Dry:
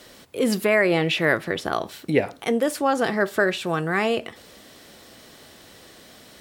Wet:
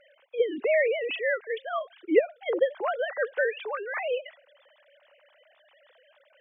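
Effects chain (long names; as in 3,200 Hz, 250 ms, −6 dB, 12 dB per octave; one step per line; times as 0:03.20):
three sine waves on the formant tracks
level −5 dB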